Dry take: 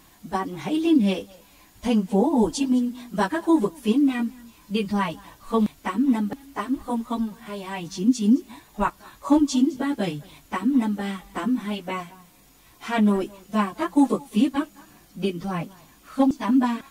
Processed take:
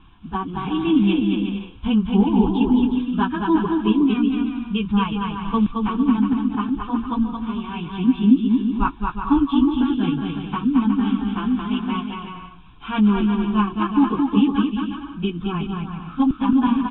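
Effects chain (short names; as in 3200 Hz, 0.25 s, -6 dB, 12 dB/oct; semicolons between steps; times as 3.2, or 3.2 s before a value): steep low-pass 3800 Hz 96 dB/oct; low shelf 89 Hz +11.5 dB; fixed phaser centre 2900 Hz, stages 8; bouncing-ball echo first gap 0.22 s, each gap 0.65×, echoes 5; gain +3 dB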